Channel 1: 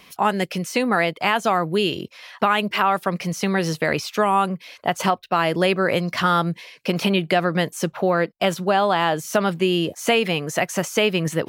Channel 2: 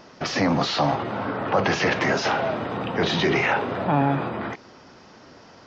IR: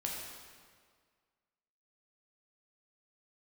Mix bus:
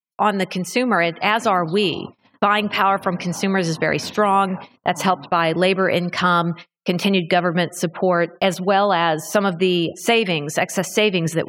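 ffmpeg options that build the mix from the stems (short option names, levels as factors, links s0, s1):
-filter_complex "[0:a]volume=1.19,asplit=3[s0][s1][s2];[s1]volume=0.0794[s3];[1:a]equalizer=f=250:t=o:w=0.33:g=7,equalizer=f=400:t=o:w=0.33:g=-11,equalizer=f=1000:t=o:w=0.33:g=11,acrossover=split=160|730|3400[s4][s5][s6][s7];[s4]acompressor=threshold=0.0224:ratio=4[s8];[s5]acompressor=threshold=0.0447:ratio=4[s9];[s6]acompressor=threshold=0.0141:ratio=4[s10];[s7]acompressor=threshold=0.0158:ratio=4[s11];[s8][s9][s10][s11]amix=inputs=4:normalize=0,adelay=1050,volume=0.355[s12];[s2]apad=whole_len=296121[s13];[s12][s13]sidechaincompress=threshold=0.0631:ratio=6:attack=28:release=117[s14];[2:a]atrim=start_sample=2205[s15];[s3][s15]afir=irnorm=-1:irlink=0[s16];[s0][s14][s16]amix=inputs=3:normalize=0,afftfilt=real='re*gte(hypot(re,im),0.01)':imag='im*gte(hypot(re,im),0.01)':win_size=1024:overlap=0.75,agate=range=0.00316:threshold=0.0282:ratio=16:detection=peak"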